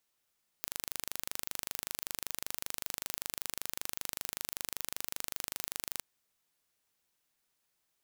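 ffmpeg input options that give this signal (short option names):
-f lavfi -i "aevalsrc='0.376*eq(mod(n,1750),0)':d=5.39:s=44100"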